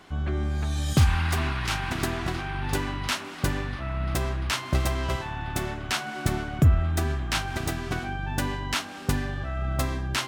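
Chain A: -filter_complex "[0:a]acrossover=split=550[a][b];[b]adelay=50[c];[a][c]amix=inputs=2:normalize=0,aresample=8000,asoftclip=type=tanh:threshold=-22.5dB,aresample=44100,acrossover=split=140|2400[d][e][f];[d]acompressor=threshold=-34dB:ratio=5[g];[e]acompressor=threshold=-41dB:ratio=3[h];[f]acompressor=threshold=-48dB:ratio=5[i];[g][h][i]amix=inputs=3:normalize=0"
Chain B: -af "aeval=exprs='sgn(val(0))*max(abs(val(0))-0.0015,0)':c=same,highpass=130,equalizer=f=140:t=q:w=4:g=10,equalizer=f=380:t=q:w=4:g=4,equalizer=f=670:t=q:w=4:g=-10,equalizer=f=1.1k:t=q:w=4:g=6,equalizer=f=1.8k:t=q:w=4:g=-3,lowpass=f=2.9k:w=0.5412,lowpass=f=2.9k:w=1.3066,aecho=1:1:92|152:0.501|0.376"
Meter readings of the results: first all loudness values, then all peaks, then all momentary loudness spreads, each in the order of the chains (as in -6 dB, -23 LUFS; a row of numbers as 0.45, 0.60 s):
-37.0, -27.0 LUFS; -23.0, -7.0 dBFS; 3, 8 LU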